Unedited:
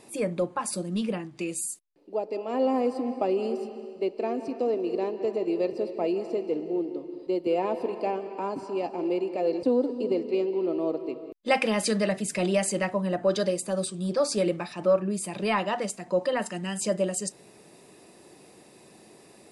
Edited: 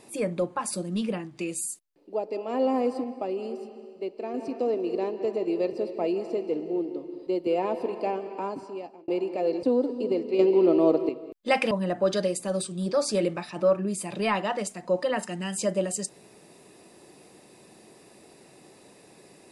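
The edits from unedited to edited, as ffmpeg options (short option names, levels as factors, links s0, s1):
-filter_complex "[0:a]asplit=7[s0][s1][s2][s3][s4][s5][s6];[s0]atrim=end=3.042[s7];[s1]atrim=start=3.038:end=4.342,asetpts=PTS-STARTPTS,volume=0.562[s8];[s2]atrim=start=4.338:end=9.08,asetpts=PTS-STARTPTS,afade=t=out:st=4.062:d=0.68[s9];[s3]atrim=start=9.08:end=10.392,asetpts=PTS-STARTPTS,afade=t=in:d=0.004:c=hsin[s10];[s4]atrim=start=10.388:end=11.092,asetpts=PTS-STARTPTS,volume=2.37[s11];[s5]atrim=start=11.088:end=11.712[s12];[s6]atrim=start=12.938[s13];[s7][s8]acrossfade=d=0.004:c1=hsin:c2=hsin[s14];[s9][s10]concat=n=2:v=0:a=1[s15];[s14][s15]acrossfade=d=0.004:c1=hsin:c2=hsin[s16];[s16][s11]acrossfade=d=0.004:c1=hsin:c2=hsin[s17];[s17][s12]acrossfade=d=0.004:c1=hsin:c2=hsin[s18];[s18][s13]acrossfade=d=0.004:c1=hsin:c2=hsin"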